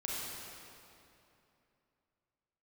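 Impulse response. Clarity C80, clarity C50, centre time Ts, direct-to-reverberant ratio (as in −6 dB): −1.5 dB, −3.5 dB, 175 ms, −6.0 dB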